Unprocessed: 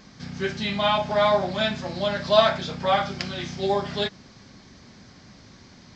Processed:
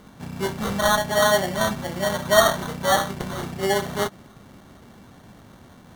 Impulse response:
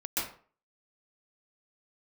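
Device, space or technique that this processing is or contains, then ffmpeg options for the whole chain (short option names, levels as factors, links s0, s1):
crushed at another speed: -af "asetrate=22050,aresample=44100,acrusher=samples=35:mix=1:aa=0.000001,asetrate=88200,aresample=44100,volume=1.19"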